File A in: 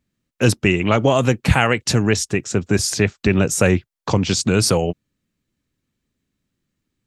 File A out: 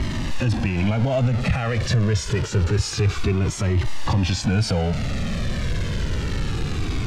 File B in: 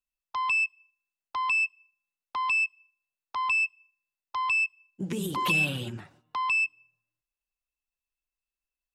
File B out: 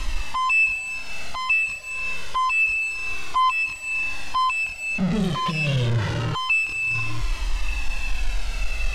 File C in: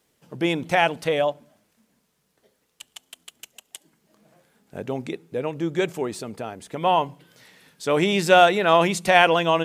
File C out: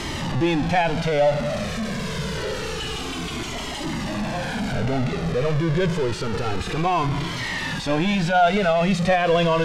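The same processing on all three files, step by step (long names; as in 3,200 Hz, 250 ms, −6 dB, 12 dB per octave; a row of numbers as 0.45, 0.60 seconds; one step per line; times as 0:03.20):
converter with a step at zero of −17.5 dBFS
low-pass filter 4,600 Hz 12 dB per octave
harmonic and percussive parts rebalanced percussive −6 dB
low-shelf EQ 120 Hz +8.5 dB
brickwall limiter −11 dBFS
flanger whose copies keep moving one way falling 0.27 Hz
loudness normalisation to −23 LKFS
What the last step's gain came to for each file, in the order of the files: +2.5, +2.5, +3.0 decibels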